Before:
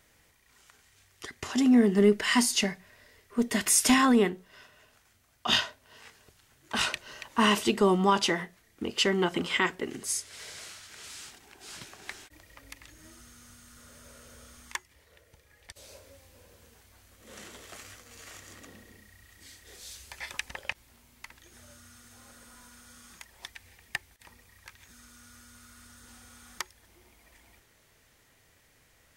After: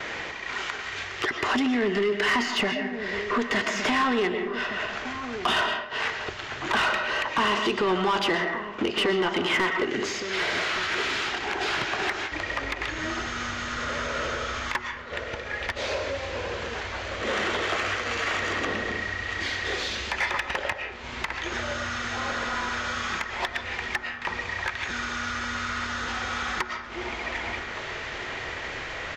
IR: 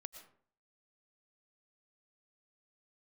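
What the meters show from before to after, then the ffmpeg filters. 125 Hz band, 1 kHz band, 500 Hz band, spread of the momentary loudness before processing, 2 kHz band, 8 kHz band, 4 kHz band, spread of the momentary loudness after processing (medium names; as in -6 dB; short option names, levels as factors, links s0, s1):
+1.5 dB, +6.5 dB, +3.5 dB, 24 LU, +10.0 dB, -6.0 dB, +4.0 dB, 9 LU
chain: -filter_complex "[0:a]alimiter=limit=0.15:level=0:latency=1:release=15,asubboost=boost=2:cutoff=130,aresample=16000,aresample=44100,acompressor=mode=upward:threshold=0.0282:ratio=2.5,agate=range=0.0224:threshold=0.00708:ratio=3:detection=peak,equalizer=f=370:t=o:w=0.36:g=5,asplit=2[s0][s1];[1:a]atrim=start_sample=2205,lowpass=3700[s2];[s1][s2]afir=irnorm=-1:irlink=0,volume=3.98[s3];[s0][s3]amix=inputs=2:normalize=0,acrossover=split=1700|4200[s4][s5][s6];[s4]acompressor=threshold=0.0562:ratio=4[s7];[s5]acompressor=threshold=0.0126:ratio=4[s8];[s6]acompressor=threshold=0.00398:ratio=4[s9];[s7][s8][s9]amix=inputs=3:normalize=0,asplit=2[s10][s11];[s11]highpass=f=720:p=1,volume=14.1,asoftclip=type=tanh:threshold=0.422[s12];[s10][s12]amix=inputs=2:normalize=0,lowpass=f=4900:p=1,volume=0.501,asplit=2[s13][s14];[s14]adelay=1166,volume=0.316,highshelf=f=4000:g=-26.2[s15];[s13][s15]amix=inputs=2:normalize=0,volume=0.473"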